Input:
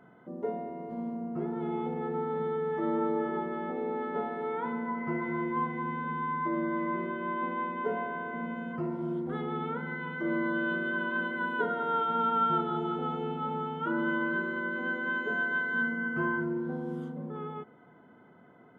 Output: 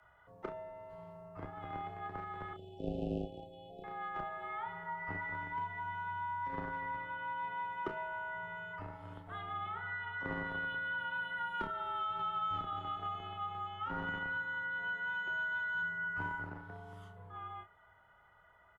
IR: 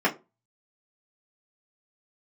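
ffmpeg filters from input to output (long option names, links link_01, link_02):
-filter_complex "[0:a]acrossover=split=120|800[link_01][link_02][link_03];[link_02]acrusher=bits=3:mix=0:aa=0.5[link_04];[link_01][link_04][link_03]amix=inputs=3:normalize=0,afreqshift=-61,asettb=1/sr,asplit=3[link_05][link_06][link_07];[link_05]atrim=end=2.534[link_08];[link_06]atrim=start=2.53:end=3.84,asetpts=PTS-STARTPTS,afade=type=in:duration=0.004:curve=qsin,afade=type=out:start_time=1.306:duration=0.004:curve=qsin,asuperstop=centerf=1400:order=20:qfactor=0.74[link_09];[link_07]atrim=start=3.836[link_10];[link_08][link_09]acrossfade=duration=0.004:curve1=hsin:curve2=qsin[link_11];[link_11][link_10]acrossfade=duration=0.004:curve1=qsin:curve2=hsin,asplit=2[link_12][link_13];[link_13]adelay=30,volume=-9dB[link_14];[link_12][link_14]amix=inputs=2:normalize=0,asplit=2[link_15][link_16];[1:a]atrim=start_sample=2205[link_17];[link_16][link_17]afir=irnorm=-1:irlink=0,volume=-33dB[link_18];[link_15][link_18]amix=inputs=2:normalize=0,acrossover=split=330|3000[link_19][link_20][link_21];[link_20]acompressor=threshold=-37dB:ratio=3[link_22];[link_19][link_22][link_21]amix=inputs=3:normalize=0,volume=-1dB"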